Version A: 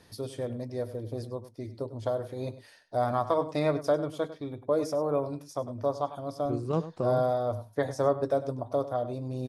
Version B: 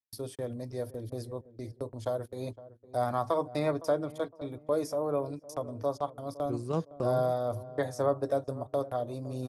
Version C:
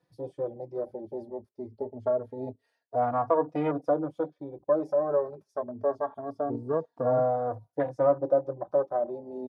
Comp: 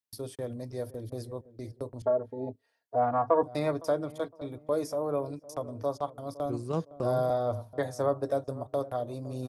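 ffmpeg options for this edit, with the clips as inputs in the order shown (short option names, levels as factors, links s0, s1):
-filter_complex "[1:a]asplit=3[s0][s1][s2];[s0]atrim=end=2.022[s3];[2:a]atrim=start=2.018:end=3.432[s4];[s1]atrim=start=3.428:end=7.302[s5];[0:a]atrim=start=7.298:end=7.732[s6];[s2]atrim=start=7.728[s7];[s3][s4]acrossfade=d=0.004:c1=hsin:c2=hsin[s8];[s8][s5]acrossfade=d=0.004:c1=hsin:c2=hsin[s9];[s9][s6]acrossfade=d=0.004:c1=hsin:c2=hsin[s10];[s10][s7]acrossfade=d=0.004:c1=hsin:c2=hsin"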